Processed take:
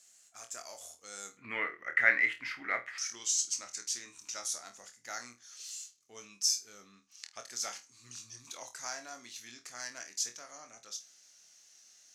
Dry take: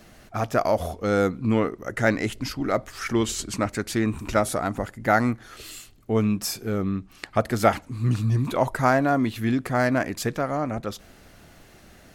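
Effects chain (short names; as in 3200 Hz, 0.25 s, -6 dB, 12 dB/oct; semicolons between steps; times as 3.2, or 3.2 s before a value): band-pass 7300 Hz, Q 5.1, from 1.37 s 2000 Hz, from 2.98 s 6100 Hz; flutter echo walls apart 4.3 m, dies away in 0.22 s; gain +6 dB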